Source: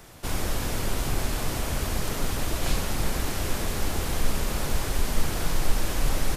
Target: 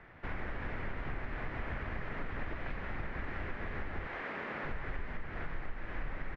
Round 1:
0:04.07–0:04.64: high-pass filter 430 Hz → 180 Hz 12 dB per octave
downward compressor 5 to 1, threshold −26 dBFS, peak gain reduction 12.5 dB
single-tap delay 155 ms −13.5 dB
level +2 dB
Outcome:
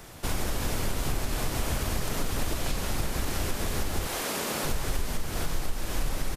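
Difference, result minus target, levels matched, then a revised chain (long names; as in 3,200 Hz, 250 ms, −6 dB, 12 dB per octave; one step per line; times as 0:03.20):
2,000 Hz band −6.5 dB
0:04.07–0:04.64: high-pass filter 430 Hz → 180 Hz 12 dB per octave
downward compressor 5 to 1, threshold −26 dBFS, peak gain reduction 12.5 dB
transistor ladder low-pass 2,200 Hz, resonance 55%
single-tap delay 155 ms −13.5 dB
level +2 dB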